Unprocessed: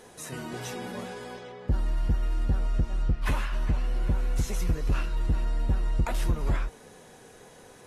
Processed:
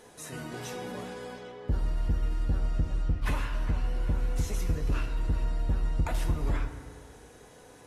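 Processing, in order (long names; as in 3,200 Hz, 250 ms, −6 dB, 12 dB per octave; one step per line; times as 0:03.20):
feedback delay network reverb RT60 2 s, low-frequency decay 1×, high-frequency decay 0.5×, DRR 7 dB
level −3 dB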